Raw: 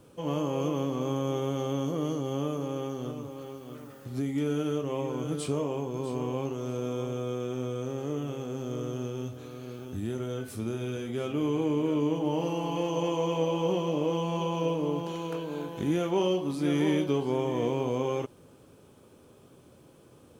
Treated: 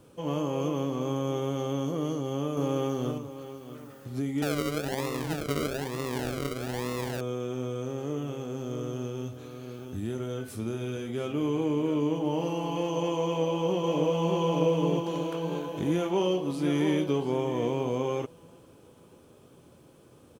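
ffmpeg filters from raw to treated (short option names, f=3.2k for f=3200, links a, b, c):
-filter_complex "[0:a]asettb=1/sr,asplit=3[a][b][c];[a]atrim=end=4.424[d];[b]atrim=start=4.42:end=7.21,asetpts=PTS-STARTPTS,afade=t=in:d=0.004:c=qsin,afade=t=out:st=2.786:d=0.004:c=qsin,acrusher=samples=40:mix=1:aa=0.000001:lfo=1:lforange=24:lforate=1.1[e];[c]atrim=start=7.206[f];[d][e]acrossfade=d=0.004:c1=hsin:c2=qsin[g];[g][f]acrossfade=d=0.004:c1=qsin:c2=hsin,asplit=2[h][i];[i]afade=t=in:st=13.23:d=0.01,afade=t=out:st=14.39:d=0.01,aecho=0:1:600|1200|1800|2400|3000|3600|4200|4800|5400:0.749894|0.449937|0.269962|0.161977|0.0971863|0.0583118|0.0349871|0.0209922|0.0125953[j];[h][j]amix=inputs=2:normalize=0,asplit=3[k][l][m];[k]atrim=end=2.572[n];[l]atrim=start=2.568:end=3.182,asetpts=PTS-STARTPTS,volume=5dB[o];[m]atrim=start=3.178[p];[n][o]acrossfade=d=0.004:c1=hsin:c2=hsin[q];[q][p]acrossfade=d=0.004:c1=hsin:c2=hsin"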